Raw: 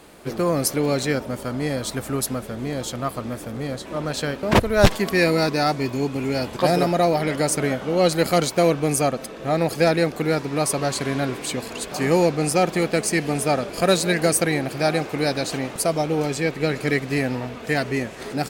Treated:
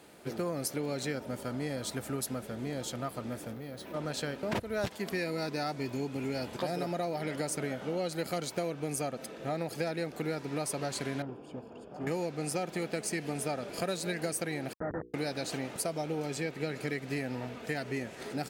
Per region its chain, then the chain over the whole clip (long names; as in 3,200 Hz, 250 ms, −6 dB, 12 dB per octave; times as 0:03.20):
0:03.53–0:03.94: low-pass filter 8,800 Hz + bad sample-rate conversion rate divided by 3×, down filtered, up hold + downward compressor 4 to 1, threshold −31 dBFS
0:11.22–0:12.07: moving average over 22 samples + tube saturation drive 20 dB, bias 0.75
0:14.73–0:15.14: comparator with hysteresis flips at −19.5 dBFS + Chebyshev low-pass with heavy ripple 1,900 Hz, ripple 3 dB + mains-hum notches 60/120/180/240/300/360/420/480 Hz
whole clip: high-pass filter 82 Hz; downward compressor 6 to 1, threshold −22 dBFS; notch filter 1,100 Hz, Q 11; level −8 dB